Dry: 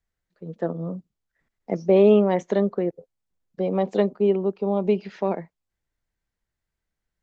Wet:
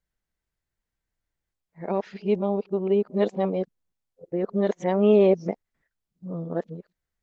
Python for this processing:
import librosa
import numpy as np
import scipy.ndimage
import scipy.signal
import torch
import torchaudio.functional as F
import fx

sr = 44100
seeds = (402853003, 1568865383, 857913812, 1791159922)

y = np.flip(x).copy()
y = y * librosa.db_to_amplitude(-2.0)